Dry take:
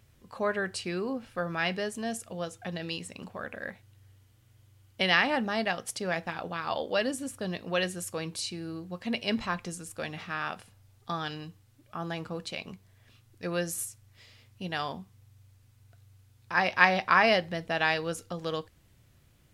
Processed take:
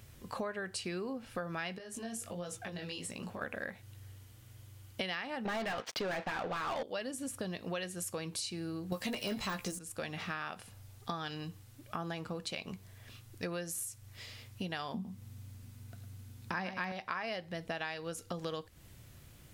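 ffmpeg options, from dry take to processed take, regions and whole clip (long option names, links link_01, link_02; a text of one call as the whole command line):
ffmpeg -i in.wav -filter_complex "[0:a]asettb=1/sr,asplit=3[link_01][link_02][link_03];[link_01]atrim=end=1.784[link_04];[link_02]atrim=start=1.78:end=3.42,asetpts=PTS-STARTPTS,afade=type=in:duration=0.004:curve=qsin,afade=type=out:start_time=1.636:duration=0.004:curve=qsin,acompressor=threshold=-40dB:ratio=6:attack=3.2:release=140:knee=1:detection=peak,flanger=delay=16.5:depth=6.1:speed=1.4[link_05];[link_03]atrim=start=3.416[link_06];[link_04][link_05]acrossfade=duration=0.004:curve1=hsin:curve2=qsin[link_07];[link_07][link_06]acrossfade=duration=0.004:curve1=qsin:curve2=hsin,asettb=1/sr,asplit=3[link_08][link_09][link_10];[link_08]atrim=end=5.454[link_11];[link_09]atrim=start=5.45:end=6.83,asetpts=PTS-STARTPTS,afade=type=in:duration=0.004:curve=qsin,afade=type=out:start_time=1.376:duration=0.004:curve=qsin,lowpass=frequency=5000:width=0.5412,lowpass=frequency=5000:width=1.3066,aeval=exprs='sgn(val(0))*max(abs(val(0))-0.00178,0)':channel_layout=same,asplit=2[link_12][link_13];[link_13]highpass=frequency=720:poles=1,volume=29dB,asoftclip=type=tanh:threshold=-14.5dB[link_14];[link_12][link_14]amix=inputs=2:normalize=0,lowpass=frequency=2100:poles=1,volume=-6dB[link_15];[link_10]atrim=start=6.826[link_16];[link_11][link_15]acrossfade=duration=0.004:curve1=hsin:curve2=qsin[link_17];[link_17][link_16]acrossfade=duration=0.004:curve1=qsin:curve2=hsin,asettb=1/sr,asplit=3[link_18][link_19][link_20];[link_18]atrim=end=8.924[link_21];[link_19]atrim=start=8.92:end=9.79,asetpts=PTS-STARTPTS,afade=type=in:duration=0.004:curve=qsin,afade=type=out:start_time=0.866:duration=0.004:curve=qsin,aemphasis=mode=production:type=50kf,aeval=exprs='0.251*sin(PI/2*2.82*val(0)/0.251)':channel_layout=same,asplit=2[link_22][link_23];[link_23]adelay=15,volume=-6.5dB[link_24];[link_22][link_24]amix=inputs=2:normalize=0,atrim=end_sample=38367[link_25];[link_20]atrim=start=9.786[link_26];[link_21][link_25]acrossfade=duration=0.004:curve1=hsin:curve2=qsin[link_27];[link_27][link_26]acrossfade=duration=0.004:curve1=qsin:curve2=hsin,asettb=1/sr,asplit=3[link_28][link_29][link_30];[link_28]atrim=end=14.944[link_31];[link_29]atrim=start=14.94:end=16.92,asetpts=PTS-STARTPTS,afade=type=in:duration=0.004:curve=qsin,afade=type=out:start_time=1.976:duration=0.004:curve=qsin,equalizer=frequency=220:width=1.8:gain=14,aecho=1:1:106:0.266,atrim=end_sample=87318[link_32];[link_30]atrim=start=16.916[link_33];[link_31][link_32]acrossfade=duration=0.004:curve1=hsin:curve2=qsin[link_34];[link_34][link_33]acrossfade=duration=0.004:curve1=qsin:curve2=hsin,deesser=0.55,highshelf=frequency=6900:gain=4.5,acompressor=threshold=-42dB:ratio=8,volume=6dB" out.wav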